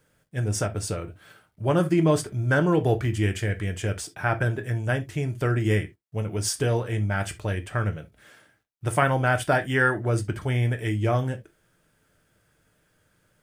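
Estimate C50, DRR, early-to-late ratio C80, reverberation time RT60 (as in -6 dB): 18.5 dB, 7.5 dB, 37.5 dB, no single decay rate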